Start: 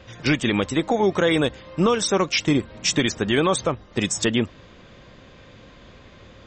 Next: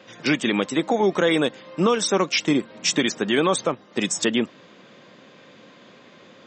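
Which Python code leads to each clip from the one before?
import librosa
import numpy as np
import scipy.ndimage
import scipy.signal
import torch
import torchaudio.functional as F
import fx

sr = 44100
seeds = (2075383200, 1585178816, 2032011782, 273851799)

y = scipy.signal.sosfilt(scipy.signal.butter(4, 170.0, 'highpass', fs=sr, output='sos'), x)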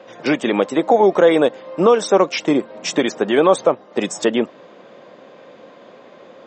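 y = fx.peak_eq(x, sr, hz=620.0, db=14.5, octaves=2.2)
y = y * librosa.db_to_amplitude(-4.0)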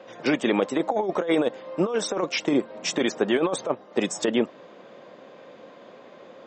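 y = fx.over_compress(x, sr, threshold_db=-15.0, ratio=-0.5)
y = y * librosa.db_to_amplitude(-6.0)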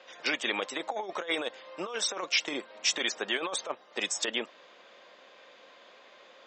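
y = fx.bandpass_q(x, sr, hz=4100.0, q=0.62)
y = y * librosa.db_to_amplitude(2.5)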